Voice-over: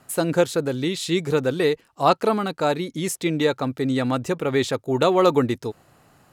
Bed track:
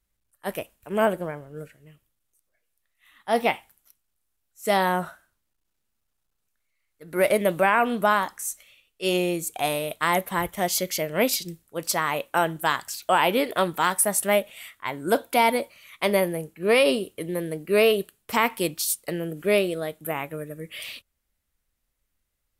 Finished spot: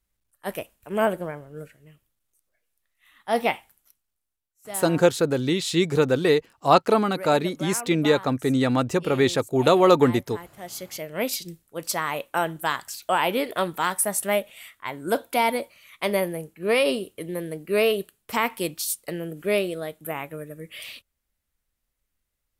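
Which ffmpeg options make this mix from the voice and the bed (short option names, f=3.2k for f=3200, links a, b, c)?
-filter_complex "[0:a]adelay=4650,volume=1dB[a];[1:a]volume=13dB,afade=t=out:st=3.77:d=0.82:silence=0.177828,afade=t=in:st=10.58:d=0.95:silence=0.211349[b];[a][b]amix=inputs=2:normalize=0"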